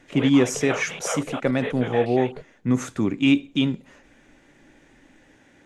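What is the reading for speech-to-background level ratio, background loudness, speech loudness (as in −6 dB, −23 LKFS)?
10.0 dB, −33.0 LKFS, −23.0 LKFS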